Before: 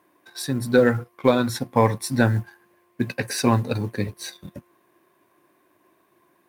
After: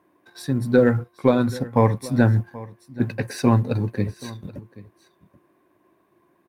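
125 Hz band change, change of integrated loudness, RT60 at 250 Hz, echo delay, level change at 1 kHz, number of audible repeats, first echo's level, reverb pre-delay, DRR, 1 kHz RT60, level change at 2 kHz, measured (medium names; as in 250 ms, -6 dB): +3.5 dB, +1.5 dB, no reverb, 780 ms, -1.5 dB, 1, -19.0 dB, no reverb, no reverb, no reverb, -3.0 dB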